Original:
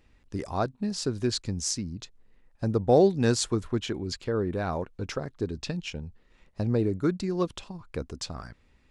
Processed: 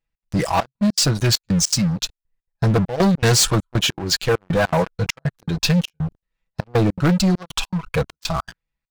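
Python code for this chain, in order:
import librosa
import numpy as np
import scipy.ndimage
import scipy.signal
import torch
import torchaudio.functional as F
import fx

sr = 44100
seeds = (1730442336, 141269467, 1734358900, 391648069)

y = fx.noise_reduce_blind(x, sr, reduce_db=11)
y = fx.peak_eq(y, sr, hz=340.0, db=-11.0, octaves=0.84)
y = y + 0.71 * np.pad(y, (int(6.1 * sr / 1000.0), 0))[:len(y)]
y = fx.step_gate(y, sr, bpm=200, pattern='xx.xxxxx..', floor_db=-24.0, edge_ms=4.5)
y = fx.leveller(y, sr, passes=5)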